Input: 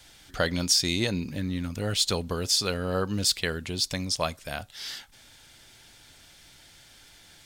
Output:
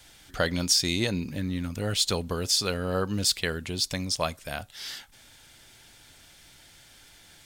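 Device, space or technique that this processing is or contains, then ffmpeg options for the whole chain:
exciter from parts: -filter_complex "[0:a]asplit=2[s0][s1];[s1]highpass=4100,asoftclip=type=tanh:threshold=0.0224,highpass=3800,volume=0.266[s2];[s0][s2]amix=inputs=2:normalize=0"

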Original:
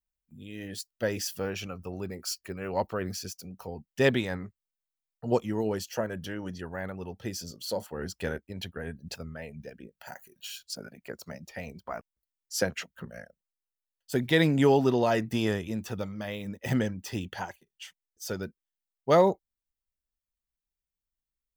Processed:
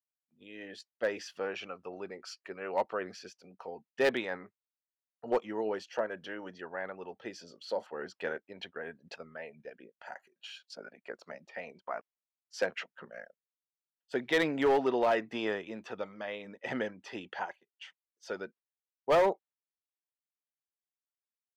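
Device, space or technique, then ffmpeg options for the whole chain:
walkie-talkie: -af "highpass=420,lowpass=2800,asoftclip=type=hard:threshold=0.0944,agate=range=0.355:threshold=0.00141:ratio=16:detection=peak"

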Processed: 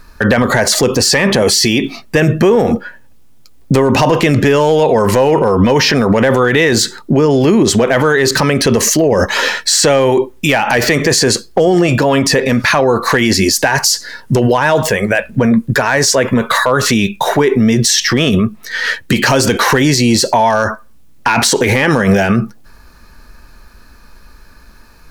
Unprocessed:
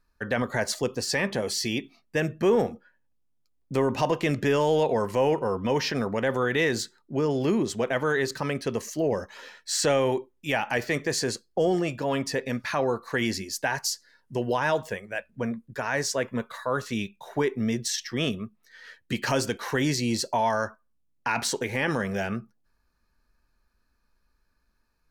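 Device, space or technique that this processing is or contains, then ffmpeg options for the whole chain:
loud club master: -af "acompressor=threshold=0.0398:ratio=2.5,asoftclip=type=hard:threshold=0.0891,alimiter=level_in=42.2:limit=0.891:release=50:level=0:latency=1,volume=0.794"

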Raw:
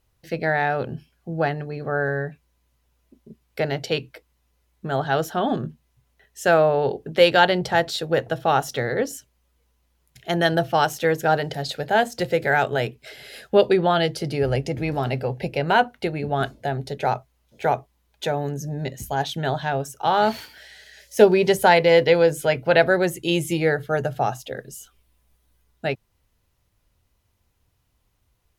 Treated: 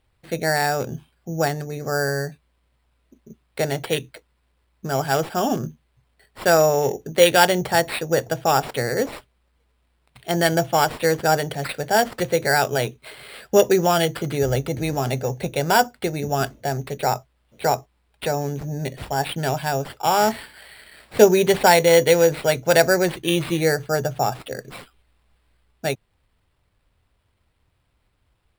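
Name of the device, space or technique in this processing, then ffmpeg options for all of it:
crushed at another speed: -af "asetrate=22050,aresample=44100,acrusher=samples=14:mix=1:aa=0.000001,asetrate=88200,aresample=44100,volume=1.12"

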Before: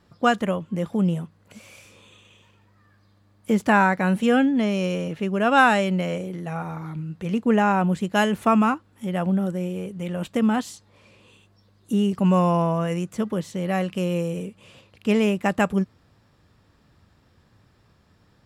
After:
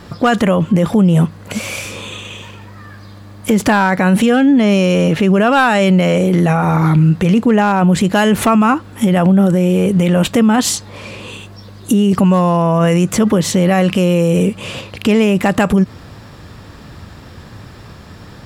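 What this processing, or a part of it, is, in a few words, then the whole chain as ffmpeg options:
loud club master: -af "acompressor=threshold=0.0708:ratio=2,asoftclip=type=hard:threshold=0.158,alimiter=level_in=23.7:limit=0.891:release=50:level=0:latency=1,volume=0.631"

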